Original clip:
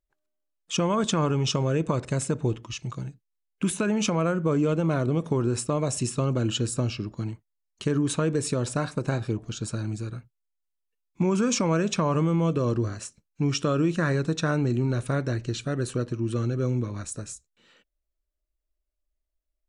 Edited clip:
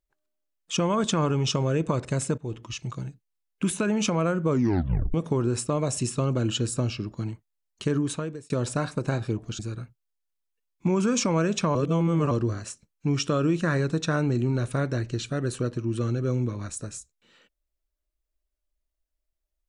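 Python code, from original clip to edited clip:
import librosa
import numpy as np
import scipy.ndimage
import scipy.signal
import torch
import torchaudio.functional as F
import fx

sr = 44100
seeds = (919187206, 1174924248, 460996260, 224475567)

y = fx.edit(x, sr, fx.fade_in_from(start_s=2.38, length_s=0.28, floor_db=-19.5),
    fx.tape_stop(start_s=4.51, length_s=0.63),
    fx.fade_out_span(start_s=7.93, length_s=0.57),
    fx.cut(start_s=9.59, length_s=0.35),
    fx.reverse_span(start_s=12.1, length_s=0.56), tone=tone)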